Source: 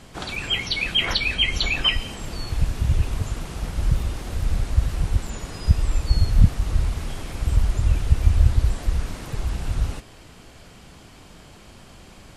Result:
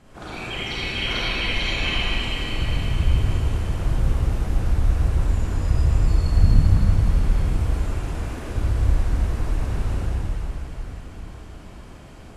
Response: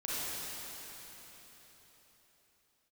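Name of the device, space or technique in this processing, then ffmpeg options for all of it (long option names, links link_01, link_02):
swimming-pool hall: -filter_complex "[0:a]equalizer=frequency=4000:width=0.88:gain=-5,asettb=1/sr,asplit=3[link_01][link_02][link_03];[link_01]atrim=end=7.564[link_04];[link_02]atrim=start=7.56:end=8.52,asetpts=PTS-STARTPTS,afade=type=in:duration=0.004:curve=qsin,afade=type=out:start_time=0.956:duration=0.004:curve=qsin,highpass=frequency=210:width=0.5412,highpass=frequency=210:width=1.3066[link_05];[link_03]atrim=start=8.516[link_06];[link_04][link_05]acrossfade=duration=0.004:curve1=hsin:curve2=qsin[link_07];[link_07][link_06]acrossfade=duration=0.004:curve1=qsin:curve2=hsin[link_08];[1:a]atrim=start_sample=2205[link_09];[link_08][link_09]afir=irnorm=-1:irlink=0,highshelf=frequency=4900:gain=-7,volume=-2.5dB"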